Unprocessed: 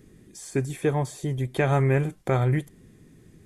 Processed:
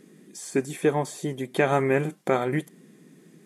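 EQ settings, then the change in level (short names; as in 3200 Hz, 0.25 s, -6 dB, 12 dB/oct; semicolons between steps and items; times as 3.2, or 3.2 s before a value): brick-wall FIR high-pass 150 Hz; +2.5 dB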